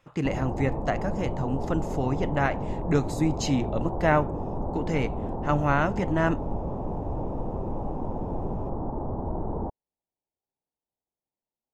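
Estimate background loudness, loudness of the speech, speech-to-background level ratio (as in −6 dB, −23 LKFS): −33.0 LKFS, −28.0 LKFS, 5.0 dB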